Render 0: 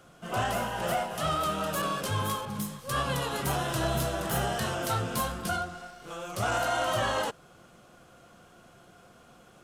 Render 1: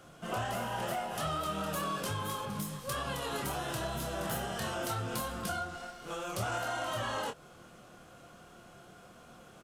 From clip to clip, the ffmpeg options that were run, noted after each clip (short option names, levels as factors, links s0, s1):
-filter_complex "[0:a]acompressor=threshold=0.0224:ratio=6,asplit=2[s0][s1];[s1]adelay=26,volume=0.473[s2];[s0][s2]amix=inputs=2:normalize=0"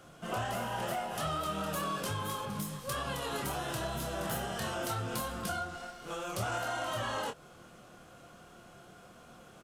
-af anull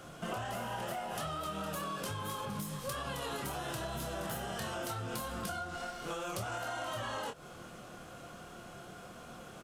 -af "acompressor=threshold=0.00891:ratio=6,volume=1.78"